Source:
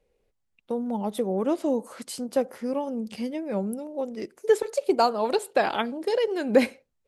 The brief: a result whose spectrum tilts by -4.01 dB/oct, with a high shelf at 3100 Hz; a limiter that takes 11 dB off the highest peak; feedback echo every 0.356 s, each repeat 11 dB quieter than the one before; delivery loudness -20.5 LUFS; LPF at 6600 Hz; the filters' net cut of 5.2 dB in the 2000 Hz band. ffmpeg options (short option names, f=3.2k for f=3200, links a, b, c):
-af "lowpass=6.6k,equalizer=f=2k:t=o:g=-4.5,highshelf=f=3.1k:g=-6.5,alimiter=limit=-18dB:level=0:latency=1,aecho=1:1:356|712|1068:0.282|0.0789|0.0221,volume=9dB"